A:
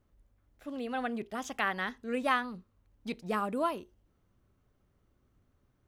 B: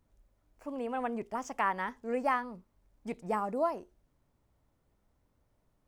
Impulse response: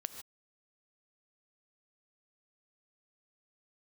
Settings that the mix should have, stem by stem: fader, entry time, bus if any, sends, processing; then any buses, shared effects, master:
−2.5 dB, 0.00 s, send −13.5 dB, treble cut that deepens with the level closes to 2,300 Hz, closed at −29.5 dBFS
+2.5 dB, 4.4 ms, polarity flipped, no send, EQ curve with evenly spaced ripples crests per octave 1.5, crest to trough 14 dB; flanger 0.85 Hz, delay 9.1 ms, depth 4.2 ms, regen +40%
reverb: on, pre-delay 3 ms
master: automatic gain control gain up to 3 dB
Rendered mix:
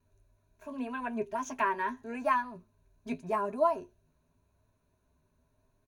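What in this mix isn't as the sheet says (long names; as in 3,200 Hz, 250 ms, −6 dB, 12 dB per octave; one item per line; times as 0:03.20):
stem A −2.5 dB → −10.5 dB
master: missing automatic gain control gain up to 3 dB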